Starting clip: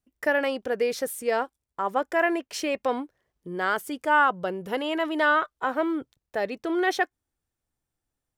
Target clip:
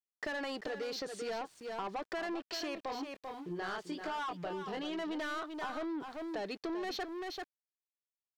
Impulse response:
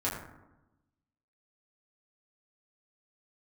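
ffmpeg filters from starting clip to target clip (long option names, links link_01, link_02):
-filter_complex "[0:a]highpass=180,equalizer=frequency=240:width_type=q:width=4:gain=-7,equalizer=frequency=530:width_type=q:width=4:gain=-9,equalizer=frequency=940:width_type=q:width=4:gain=-3,equalizer=frequency=1400:width_type=q:width=4:gain=-6,equalizer=frequency=2200:width_type=q:width=4:gain=-5,equalizer=frequency=4400:width_type=q:width=4:gain=10,lowpass=frequency=7000:width=0.5412,lowpass=frequency=7000:width=1.3066,asplit=3[link_01][link_02][link_03];[link_01]afade=type=out:start_time=2.76:duration=0.02[link_04];[link_02]flanger=delay=19:depth=7.5:speed=1.2,afade=type=in:start_time=2.76:duration=0.02,afade=type=out:start_time=4.96:duration=0.02[link_05];[link_03]afade=type=in:start_time=4.96:duration=0.02[link_06];[link_04][link_05][link_06]amix=inputs=3:normalize=0,asoftclip=type=tanh:threshold=-32dB,aecho=1:1:390:0.335,aeval=exprs='val(0)*gte(abs(val(0)),0.00158)':channel_layout=same,aemphasis=mode=reproduction:type=cd,acompressor=threshold=-40dB:ratio=6,volume=3.5dB"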